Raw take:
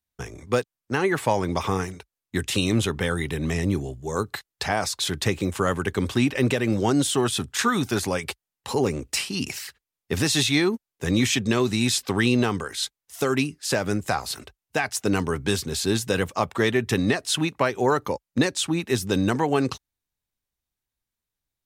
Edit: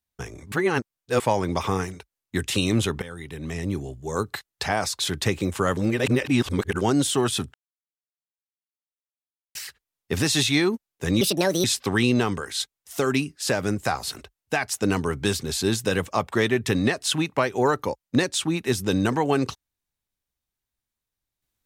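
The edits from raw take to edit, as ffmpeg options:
-filter_complex "[0:a]asplit=10[s0][s1][s2][s3][s4][s5][s6][s7][s8][s9];[s0]atrim=end=0.522[s10];[s1]atrim=start=0.518:end=1.202,asetpts=PTS-STARTPTS,areverse[s11];[s2]atrim=start=1.198:end=3.02,asetpts=PTS-STARTPTS,afade=t=out:st=1.818:d=0.004:c=hsin:silence=0.16788[s12];[s3]atrim=start=3.02:end=5.772,asetpts=PTS-STARTPTS,afade=t=in:d=1.19:silence=0.16788[s13];[s4]atrim=start=5.768:end=6.812,asetpts=PTS-STARTPTS,areverse[s14];[s5]atrim=start=6.808:end=7.54,asetpts=PTS-STARTPTS,afade=t=out:st=0.728:d=0.004:c=hsin[s15];[s6]atrim=start=7.54:end=9.55,asetpts=PTS-STARTPTS,volume=0[s16];[s7]atrim=start=9.55:end=11.214,asetpts=PTS-STARTPTS,afade=t=in:d=0.004:c=hsin[s17];[s8]atrim=start=11.21:end=11.87,asetpts=PTS-STARTPTS,asetrate=67473,aresample=44100[s18];[s9]atrim=start=11.866[s19];[s10][s11]acrossfade=d=0.004:c1=hsin:c2=hsin[s20];[s12][s13]concat=n=2:v=0:a=1[s21];[s20][s21]acrossfade=d=0.004:c1=hsin:c2=hsin[s22];[s22][s14]acrossfade=d=0.004:c1=hsin:c2=hsin[s23];[s15][s16][s17]concat=n=3:v=0:a=1[s24];[s23][s24]acrossfade=d=0.004:c1=hsin:c2=hsin[s25];[s25][s18]acrossfade=d=0.004:c1=hsin:c2=hsin[s26];[s26][s19]acrossfade=d=0.004:c1=hsin:c2=hsin"

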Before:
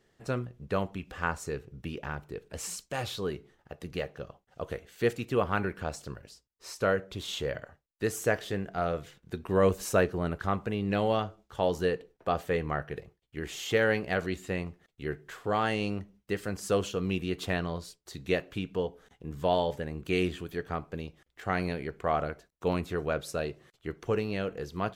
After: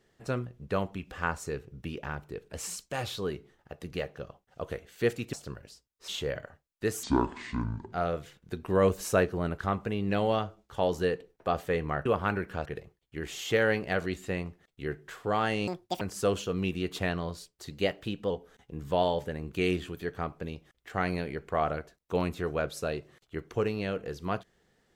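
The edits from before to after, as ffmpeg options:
-filter_complex "[0:a]asplit=11[s0][s1][s2][s3][s4][s5][s6][s7][s8][s9][s10];[s0]atrim=end=5.332[s11];[s1]atrim=start=5.928:end=6.682[s12];[s2]atrim=start=7.268:end=8.224[s13];[s3]atrim=start=8.22:end=8.73,asetpts=PTS-STARTPTS,asetrate=25137,aresample=44100[s14];[s4]atrim=start=8.726:end=12.862[s15];[s5]atrim=start=5.328:end=5.932[s16];[s6]atrim=start=12.858:end=15.884[s17];[s7]atrim=start=15.88:end=16.48,asetpts=PTS-STARTPTS,asetrate=78939,aresample=44100,atrim=end_sample=14782,asetpts=PTS-STARTPTS[s18];[s8]atrim=start=16.476:end=18.184[s19];[s9]atrim=start=18.18:end=18.82,asetpts=PTS-STARTPTS,asetrate=47628,aresample=44100,atrim=end_sample=26133,asetpts=PTS-STARTPTS[s20];[s10]atrim=start=18.816[s21];[s11][s12]acrossfade=d=0.004:c1=hsin:c2=hsin[s22];[s22][s13]acrossfade=d=0.004:c1=hsin:c2=hsin[s23];[s23][s14]acrossfade=d=0.004:c1=hsin:c2=hsin[s24];[s24][s15]acrossfade=d=0.004:c1=hsin:c2=hsin[s25];[s25][s16]acrossfade=d=0.004:c1=hsin:c2=hsin[s26];[s26][s17]acrossfade=d=0.004:c1=hsin:c2=hsin[s27];[s27][s18]acrossfade=d=0.004:c1=hsin:c2=hsin[s28];[s28][s19]acrossfade=d=0.004:c1=hsin:c2=hsin[s29];[s29][s20]acrossfade=d=0.004:c1=hsin:c2=hsin[s30];[s30][s21]acrossfade=d=0.004:c1=hsin:c2=hsin"

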